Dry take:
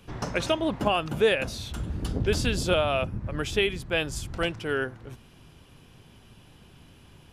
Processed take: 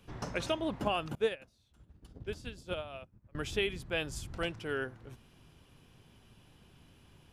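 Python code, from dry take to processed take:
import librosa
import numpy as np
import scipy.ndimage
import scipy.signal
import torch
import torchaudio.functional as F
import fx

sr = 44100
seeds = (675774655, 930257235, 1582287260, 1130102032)

y = fx.upward_expand(x, sr, threshold_db=-35.0, expansion=2.5, at=(1.15, 3.35))
y = F.gain(torch.from_numpy(y), -7.5).numpy()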